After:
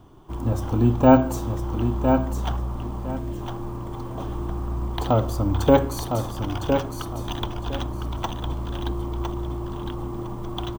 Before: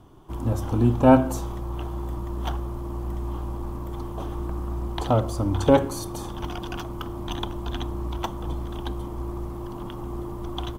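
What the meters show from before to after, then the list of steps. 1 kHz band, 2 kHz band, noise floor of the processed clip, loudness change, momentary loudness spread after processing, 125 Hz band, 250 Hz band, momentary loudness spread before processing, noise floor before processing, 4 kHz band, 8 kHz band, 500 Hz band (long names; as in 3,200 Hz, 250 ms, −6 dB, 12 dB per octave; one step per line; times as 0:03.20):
+2.0 dB, +2.0 dB, −33 dBFS, +2.0 dB, 14 LU, +2.0 dB, +2.0 dB, 14 LU, −35 dBFS, +1.5 dB, +0.5 dB, +2.0 dB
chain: bad sample-rate conversion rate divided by 2×, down filtered, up hold
time-frequency box erased 0:03.12–0:03.41, 740–1,500 Hz
repeating echo 1,008 ms, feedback 22%, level −6 dB
level +1 dB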